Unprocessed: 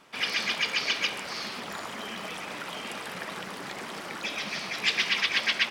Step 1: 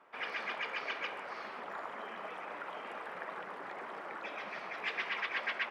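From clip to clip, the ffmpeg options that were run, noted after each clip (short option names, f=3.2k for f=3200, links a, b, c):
-filter_complex "[0:a]acrossover=split=370 2000:gain=0.158 1 0.0631[a][b][c];[a][b][c]amix=inputs=3:normalize=0,volume=-2.5dB"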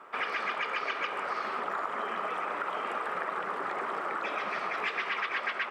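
-af "equalizer=f=400:t=o:w=0.33:g=4,equalizer=f=1.25k:t=o:w=0.33:g=8,equalizer=f=8k:t=o:w=0.33:g=6,acompressor=threshold=-38dB:ratio=6,volume=9dB"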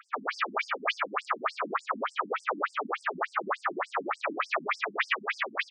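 -filter_complex "[0:a]asplit=2[a][b];[b]aecho=0:1:24|54:0.501|0.562[c];[a][c]amix=inputs=2:normalize=0,afftfilt=real='re*between(b*sr/1024,210*pow(6900/210,0.5+0.5*sin(2*PI*3.4*pts/sr))/1.41,210*pow(6900/210,0.5+0.5*sin(2*PI*3.4*pts/sr))*1.41)':imag='im*between(b*sr/1024,210*pow(6900/210,0.5+0.5*sin(2*PI*3.4*pts/sr))/1.41,210*pow(6900/210,0.5+0.5*sin(2*PI*3.4*pts/sr))*1.41)':win_size=1024:overlap=0.75,volume=9dB"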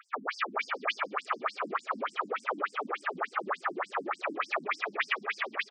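-af "aecho=1:1:425|850:0.119|0.0321,volume=-2dB"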